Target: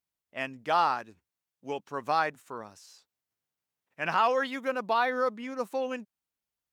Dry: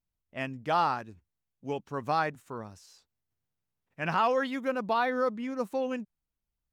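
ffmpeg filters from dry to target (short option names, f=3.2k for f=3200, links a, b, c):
-af "highpass=f=480:p=1,volume=2.5dB"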